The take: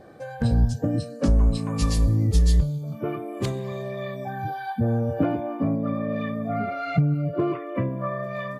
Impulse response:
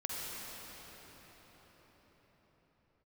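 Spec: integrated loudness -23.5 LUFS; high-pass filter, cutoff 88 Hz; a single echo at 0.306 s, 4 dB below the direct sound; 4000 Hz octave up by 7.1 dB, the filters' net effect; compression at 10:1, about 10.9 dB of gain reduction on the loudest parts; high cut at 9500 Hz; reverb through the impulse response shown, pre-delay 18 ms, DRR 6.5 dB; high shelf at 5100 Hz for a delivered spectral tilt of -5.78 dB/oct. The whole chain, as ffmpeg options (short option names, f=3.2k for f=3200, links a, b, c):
-filter_complex "[0:a]highpass=88,lowpass=9.5k,equalizer=f=4k:t=o:g=6.5,highshelf=f=5.1k:g=4.5,acompressor=threshold=-28dB:ratio=10,aecho=1:1:306:0.631,asplit=2[a][b];[1:a]atrim=start_sample=2205,adelay=18[c];[b][c]afir=irnorm=-1:irlink=0,volume=-10dB[d];[a][d]amix=inputs=2:normalize=0,volume=7dB"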